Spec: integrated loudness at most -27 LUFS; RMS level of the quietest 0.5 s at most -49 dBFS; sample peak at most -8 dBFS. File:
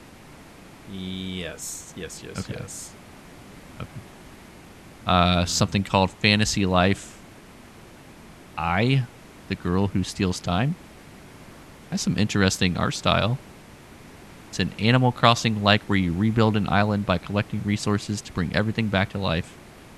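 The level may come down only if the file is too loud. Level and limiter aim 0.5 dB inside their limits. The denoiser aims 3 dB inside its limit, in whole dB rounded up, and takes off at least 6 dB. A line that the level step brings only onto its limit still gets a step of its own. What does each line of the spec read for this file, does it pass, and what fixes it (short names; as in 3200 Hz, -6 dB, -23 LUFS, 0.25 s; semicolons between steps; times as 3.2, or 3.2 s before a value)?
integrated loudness -23.5 LUFS: fail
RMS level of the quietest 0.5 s -46 dBFS: fail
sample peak -2.0 dBFS: fail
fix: gain -4 dB; limiter -8.5 dBFS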